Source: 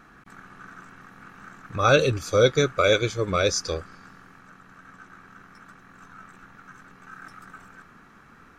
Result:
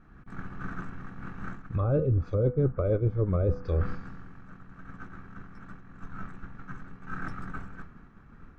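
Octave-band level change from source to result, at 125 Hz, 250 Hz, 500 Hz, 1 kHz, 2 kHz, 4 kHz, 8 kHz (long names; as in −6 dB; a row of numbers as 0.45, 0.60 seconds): +3.0 dB, −1.5 dB, −8.0 dB, −12.0 dB, −14.5 dB, below −30 dB, below −30 dB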